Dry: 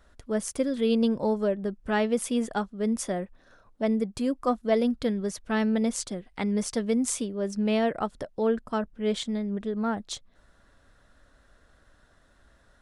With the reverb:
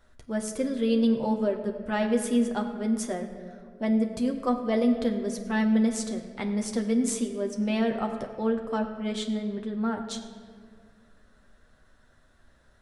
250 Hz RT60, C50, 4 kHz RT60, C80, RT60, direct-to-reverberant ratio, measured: 2.6 s, 8.0 dB, 1.2 s, 9.0 dB, 2.0 s, 2.5 dB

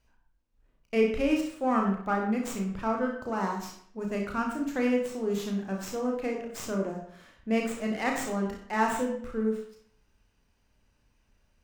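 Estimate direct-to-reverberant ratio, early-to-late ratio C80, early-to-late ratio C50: 0.0 dB, 8.0 dB, 4.5 dB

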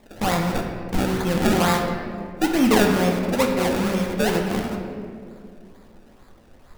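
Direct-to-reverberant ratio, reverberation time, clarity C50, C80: 1.0 dB, 2.3 s, 4.0 dB, 5.5 dB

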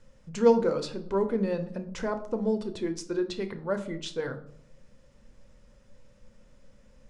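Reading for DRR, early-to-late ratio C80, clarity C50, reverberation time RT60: 7.5 dB, 16.5 dB, 12.5 dB, 0.65 s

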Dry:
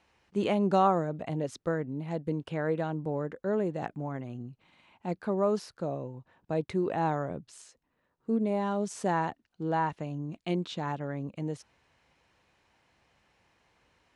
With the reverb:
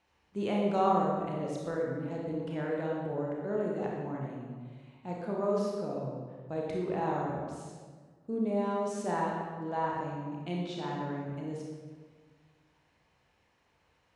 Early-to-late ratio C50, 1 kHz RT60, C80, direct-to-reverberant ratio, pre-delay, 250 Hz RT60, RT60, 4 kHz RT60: -0.5 dB, 1.5 s, 2.0 dB, -3.0 dB, 27 ms, 1.9 s, 1.5 s, 1.1 s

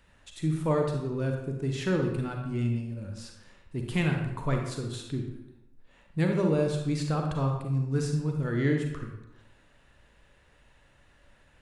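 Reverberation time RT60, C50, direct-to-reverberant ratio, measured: 0.90 s, 3.5 dB, 2.0 dB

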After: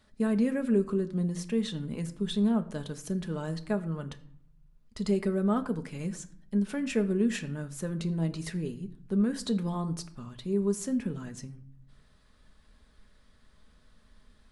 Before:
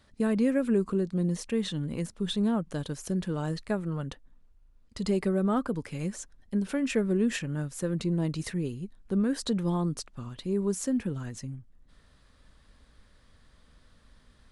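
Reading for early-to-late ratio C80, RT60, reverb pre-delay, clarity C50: 19.0 dB, 0.65 s, 5 ms, 16.5 dB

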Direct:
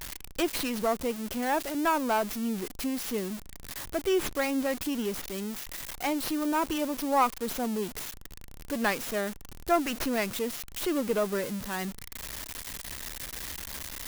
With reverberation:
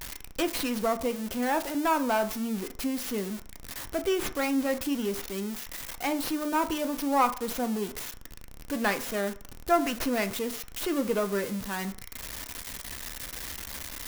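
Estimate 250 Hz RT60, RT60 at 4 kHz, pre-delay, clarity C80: 0.35 s, 0.50 s, 3 ms, 20.0 dB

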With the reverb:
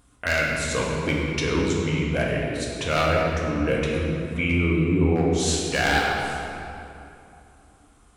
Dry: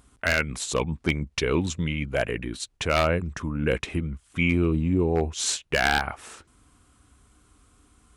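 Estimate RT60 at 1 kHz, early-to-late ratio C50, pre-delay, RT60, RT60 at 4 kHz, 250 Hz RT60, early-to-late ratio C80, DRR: 2.8 s, -0.5 dB, 3 ms, 2.8 s, 1.8 s, 3.1 s, 1.0 dB, -3.5 dB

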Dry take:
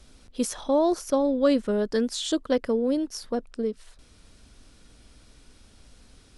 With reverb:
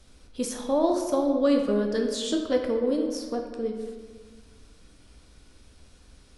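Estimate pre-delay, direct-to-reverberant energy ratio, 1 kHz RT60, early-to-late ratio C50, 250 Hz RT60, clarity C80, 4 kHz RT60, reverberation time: 7 ms, 1.5 dB, 1.5 s, 5.0 dB, 1.7 s, 6.5 dB, 0.90 s, 1.5 s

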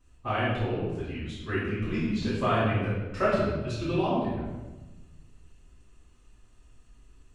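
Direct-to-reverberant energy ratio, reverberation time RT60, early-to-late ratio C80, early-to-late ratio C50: -12.0 dB, 1.2 s, 2.5 dB, -0.5 dB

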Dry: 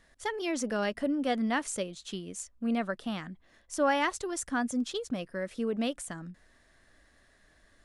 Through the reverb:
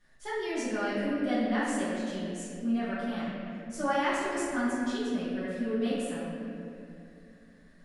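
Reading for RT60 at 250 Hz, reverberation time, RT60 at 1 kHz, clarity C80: 3.5 s, 2.6 s, 2.2 s, -0.5 dB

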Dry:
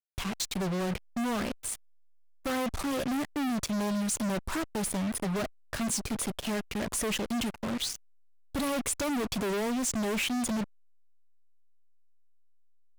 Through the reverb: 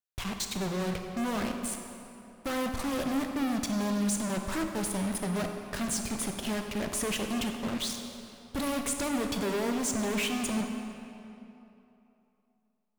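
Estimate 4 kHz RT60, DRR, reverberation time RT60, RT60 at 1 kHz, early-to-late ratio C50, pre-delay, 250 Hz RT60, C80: 2.0 s, 4.0 dB, 3.0 s, 3.0 s, 5.0 dB, 16 ms, 2.9 s, 6.0 dB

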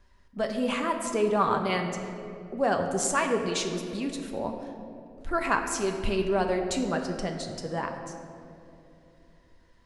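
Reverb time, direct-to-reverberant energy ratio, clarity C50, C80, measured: 2.8 s, 3.0 dB, 6.0 dB, 7.0 dB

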